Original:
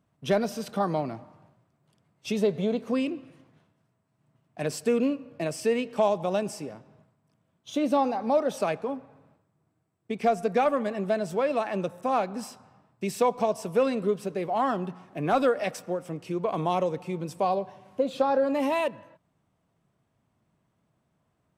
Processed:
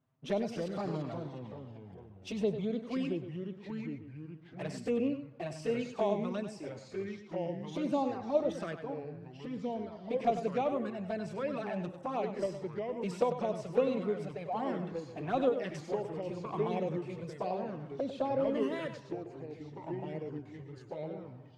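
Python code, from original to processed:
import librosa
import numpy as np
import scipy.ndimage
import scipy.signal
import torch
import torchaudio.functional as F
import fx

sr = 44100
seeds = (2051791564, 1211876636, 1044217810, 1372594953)

p1 = fx.air_absorb(x, sr, metres=69.0)
p2 = fx.level_steps(p1, sr, step_db=20)
p3 = p1 + (p2 * librosa.db_to_amplitude(-2.0))
p4 = fx.env_flanger(p3, sr, rest_ms=7.8, full_db=-19.0)
p5 = p4 + fx.echo_single(p4, sr, ms=97, db=-10.0, dry=0)
p6 = fx.echo_pitch(p5, sr, ms=212, semitones=-3, count=3, db_per_echo=-6.0)
y = p6 * librosa.db_to_amplitude(-7.0)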